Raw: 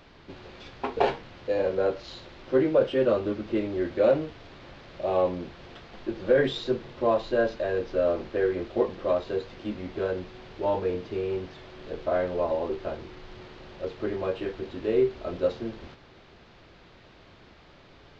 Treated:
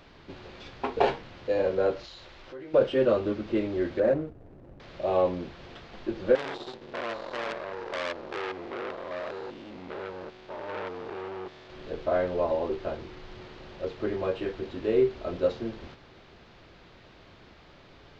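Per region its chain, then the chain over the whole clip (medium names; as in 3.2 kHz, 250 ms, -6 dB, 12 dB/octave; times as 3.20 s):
2.05–2.74 s: peaking EQ 210 Hz -8.5 dB 2.4 oct + compression 3:1, threshold -43 dBFS
4.00–4.80 s: median filter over 41 samples + low-pass 1 kHz 6 dB/octave
6.35–11.70 s: spectrogram pixelated in time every 200 ms + bass shelf 160 Hz -9 dB + transformer saturation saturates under 2.7 kHz
whole clip: none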